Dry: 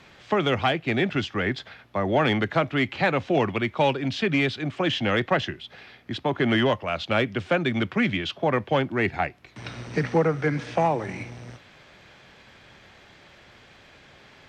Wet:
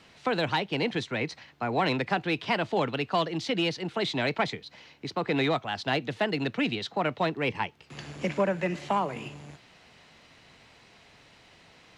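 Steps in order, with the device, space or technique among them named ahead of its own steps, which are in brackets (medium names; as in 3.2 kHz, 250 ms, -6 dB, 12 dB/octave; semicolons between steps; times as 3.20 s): nightcore (tape speed +21%); trim -4.5 dB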